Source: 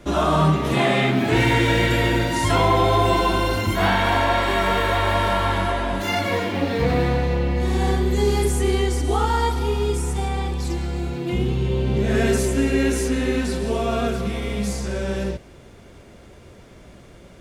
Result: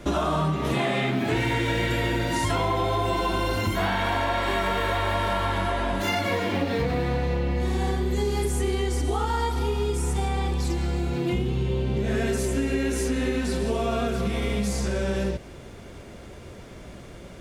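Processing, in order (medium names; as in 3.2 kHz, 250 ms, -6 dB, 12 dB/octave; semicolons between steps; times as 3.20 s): compression, threshold -25 dBFS, peak gain reduction 11 dB; trim +3 dB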